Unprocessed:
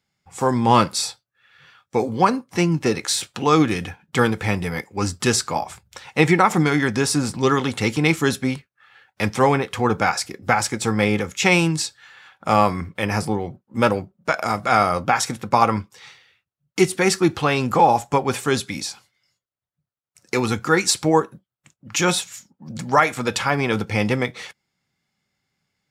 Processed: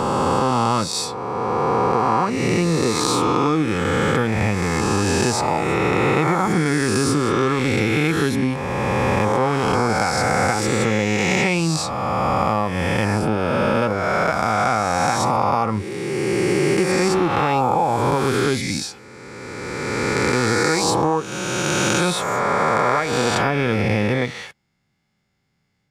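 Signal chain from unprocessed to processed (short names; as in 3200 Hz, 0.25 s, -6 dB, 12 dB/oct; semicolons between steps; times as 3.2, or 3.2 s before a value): spectral swells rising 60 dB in 2.79 s; tilt -1.5 dB/oct; compressor, threshold -15 dBFS, peak gain reduction 10.5 dB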